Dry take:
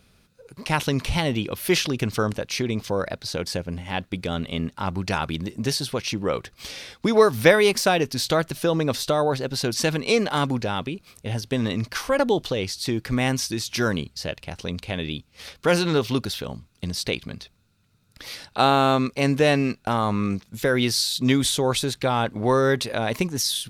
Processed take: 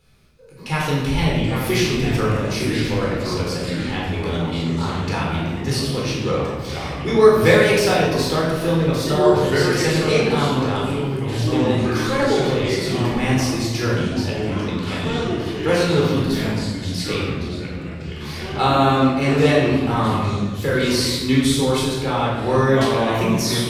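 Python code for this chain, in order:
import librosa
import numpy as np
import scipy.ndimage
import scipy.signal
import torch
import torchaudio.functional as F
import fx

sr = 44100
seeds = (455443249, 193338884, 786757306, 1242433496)

y = fx.room_shoebox(x, sr, seeds[0], volume_m3=890.0, walls='mixed', distance_m=4.1)
y = fx.echo_pitch(y, sr, ms=654, semitones=-3, count=3, db_per_echo=-6.0)
y = y * librosa.db_to_amplitude(-6.5)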